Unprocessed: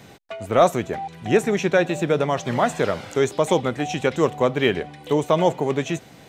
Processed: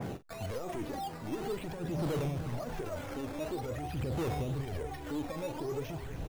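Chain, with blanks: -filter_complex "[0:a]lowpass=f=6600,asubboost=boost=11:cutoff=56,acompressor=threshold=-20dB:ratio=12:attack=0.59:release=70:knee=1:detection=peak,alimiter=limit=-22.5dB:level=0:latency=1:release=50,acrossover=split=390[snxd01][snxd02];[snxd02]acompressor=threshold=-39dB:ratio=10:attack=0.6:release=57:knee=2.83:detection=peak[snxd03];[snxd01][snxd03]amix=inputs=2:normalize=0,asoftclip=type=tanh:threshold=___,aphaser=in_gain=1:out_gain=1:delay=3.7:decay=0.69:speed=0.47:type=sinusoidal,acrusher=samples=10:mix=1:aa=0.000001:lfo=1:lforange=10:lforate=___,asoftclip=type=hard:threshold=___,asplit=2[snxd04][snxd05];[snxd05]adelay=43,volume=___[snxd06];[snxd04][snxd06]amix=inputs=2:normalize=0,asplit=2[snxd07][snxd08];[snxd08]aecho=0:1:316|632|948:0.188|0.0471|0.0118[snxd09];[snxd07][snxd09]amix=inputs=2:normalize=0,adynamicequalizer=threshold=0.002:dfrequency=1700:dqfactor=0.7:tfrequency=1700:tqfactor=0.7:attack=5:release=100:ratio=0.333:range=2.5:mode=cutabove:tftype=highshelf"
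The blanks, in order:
-33dB, 0.98, -31dB, -13dB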